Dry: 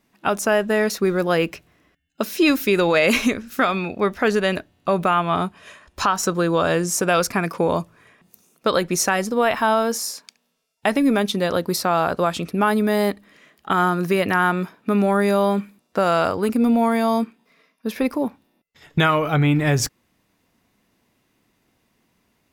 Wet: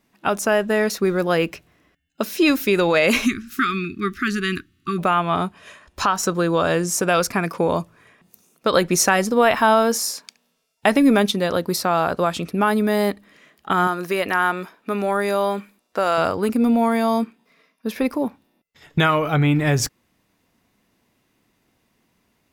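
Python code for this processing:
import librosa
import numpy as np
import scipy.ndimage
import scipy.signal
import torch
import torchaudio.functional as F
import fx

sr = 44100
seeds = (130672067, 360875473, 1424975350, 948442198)

y = fx.brickwall_bandstop(x, sr, low_hz=400.0, high_hz=1100.0, at=(3.25, 4.97), fade=0.02)
y = fx.peak_eq(y, sr, hz=130.0, db=-12.5, octaves=1.8, at=(13.87, 16.18))
y = fx.edit(y, sr, fx.clip_gain(start_s=8.73, length_s=2.58, db=3.0), tone=tone)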